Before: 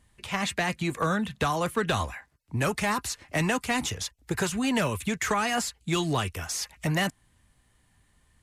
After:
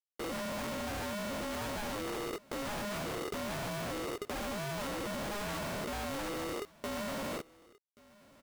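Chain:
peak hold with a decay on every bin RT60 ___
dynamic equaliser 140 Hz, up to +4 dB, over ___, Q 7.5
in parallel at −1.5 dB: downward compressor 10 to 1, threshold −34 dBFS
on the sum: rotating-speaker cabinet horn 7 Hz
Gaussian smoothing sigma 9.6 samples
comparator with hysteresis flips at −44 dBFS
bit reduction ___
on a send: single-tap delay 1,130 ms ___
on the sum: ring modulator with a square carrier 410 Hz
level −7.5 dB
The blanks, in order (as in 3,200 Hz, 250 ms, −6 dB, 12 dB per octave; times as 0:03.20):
0.77 s, −46 dBFS, 7 bits, −23 dB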